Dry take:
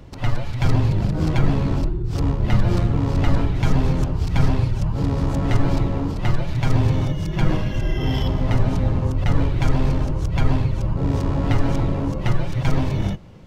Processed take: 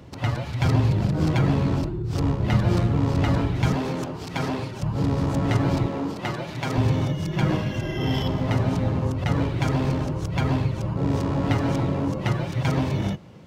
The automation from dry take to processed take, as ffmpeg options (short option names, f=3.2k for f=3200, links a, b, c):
-af "asetnsamples=n=441:p=0,asendcmd='3.75 highpass f 240;4.83 highpass f 95;5.86 highpass f 220;6.78 highpass f 110',highpass=84"